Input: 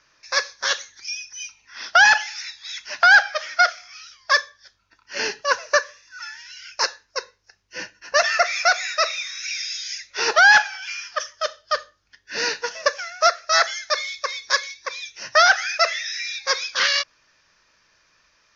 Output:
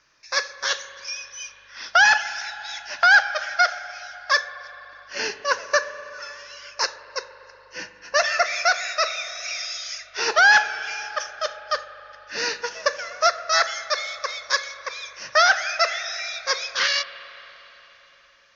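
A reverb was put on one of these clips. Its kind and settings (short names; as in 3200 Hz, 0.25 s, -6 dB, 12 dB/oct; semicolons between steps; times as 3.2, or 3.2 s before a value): spring tank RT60 4 s, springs 40/60 ms, chirp 40 ms, DRR 12.5 dB; gain -2 dB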